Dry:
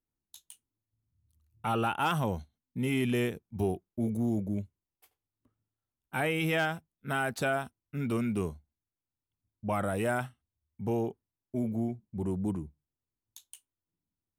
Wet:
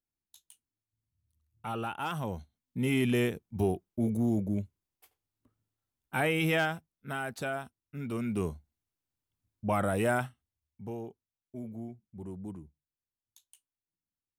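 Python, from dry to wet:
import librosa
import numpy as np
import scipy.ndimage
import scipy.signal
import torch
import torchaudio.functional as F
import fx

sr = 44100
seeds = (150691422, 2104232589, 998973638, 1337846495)

y = fx.gain(x, sr, db=fx.line((2.11, -6.0), (2.88, 1.5), (6.51, 1.5), (7.18, -5.0), (8.1, -5.0), (8.52, 2.0), (10.16, 2.0), (10.98, -9.5)))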